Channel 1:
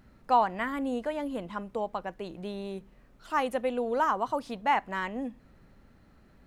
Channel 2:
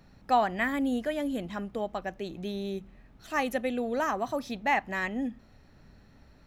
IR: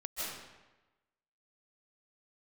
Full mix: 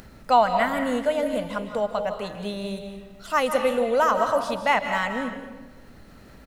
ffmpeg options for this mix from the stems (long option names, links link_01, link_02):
-filter_complex "[0:a]highshelf=frequency=2700:gain=9,volume=1.5dB,asplit=2[link_01][link_02];[link_02]volume=-5.5dB[link_03];[1:a]equalizer=frequency=500:width=0.82:gain=12,adelay=0.9,volume=-9.5dB,asplit=2[link_04][link_05];[link_05]volume=-10.5dB[link_06];[2:a]atrim=start_sample=2205[link_07];[link_03][link_06]amix=inputs=2:normalize=0[link_08];[link_08][link_07]afir=irnorm=-1:irlink=0[link_09];[link_01][link_04][link_09]amix=inputs=3:normalize=0,acompressor=mode=upward:threshold=-40dB:ratio=2.5"